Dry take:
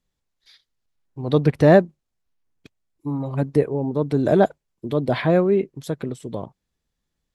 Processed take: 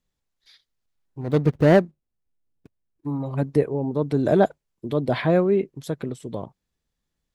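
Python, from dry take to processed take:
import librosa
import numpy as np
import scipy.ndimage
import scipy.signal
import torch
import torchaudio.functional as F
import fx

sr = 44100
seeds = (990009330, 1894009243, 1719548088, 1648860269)

y = fx.median_filter(x, sr, points=41, at=(1.21, 3.07))
y = y * librosa.db_to_amplitude(-1.5)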